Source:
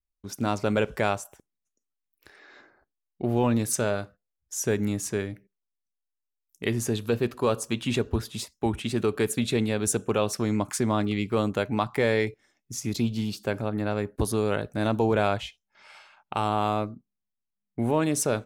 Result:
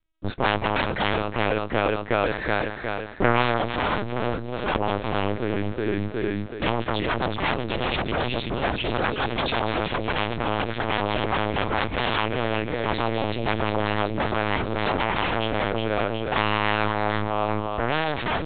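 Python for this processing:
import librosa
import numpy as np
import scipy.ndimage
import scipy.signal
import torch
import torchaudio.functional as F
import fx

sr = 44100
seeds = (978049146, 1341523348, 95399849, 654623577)

y = fx.peak_eq(x, sr, hz=95.0, db=9.5, octaves=1.8)
y = fx.echo_feedback(y, sr, ms=369, feedback_pct=58, wet_db=-8)
y = fx.fold_sine(y, sr, drive_db=18, ceiling_db=-7.0)
y = fx.rider(y, sr, range_db=10, speed_s=0.5)
y = fx.lpc_vocoder(y, sr, seeds[0], excitation='pitch_kept', order=8)
y = fx.low_shelf(y, sr, hz=220.0, db=-10.0)
y = y * 10.0 ** (-9.5 / 20.0)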